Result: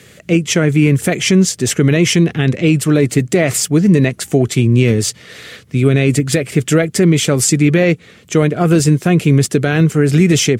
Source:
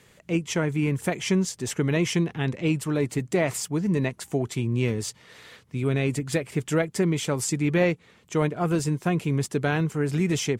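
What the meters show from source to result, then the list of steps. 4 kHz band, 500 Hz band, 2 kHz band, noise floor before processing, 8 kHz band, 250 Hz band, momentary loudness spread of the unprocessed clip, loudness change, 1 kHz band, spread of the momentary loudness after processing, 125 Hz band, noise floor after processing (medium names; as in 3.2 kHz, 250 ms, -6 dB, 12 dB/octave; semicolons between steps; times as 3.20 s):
+14.0 dB, +11.5 dB, +11.0 dB, -57 dBFS, +14.5 dB, +13.0 dB, 5 LU, +12.5 dB, +7.5 dB, 5 LU, +13.5 dB, -43 dBFS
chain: high-pass 60 Hz 24 dB/octave; peaking EQ 940 Hz -12 dB 0.48 oct; loudness maximiser +15.5 dB; trim -1 dB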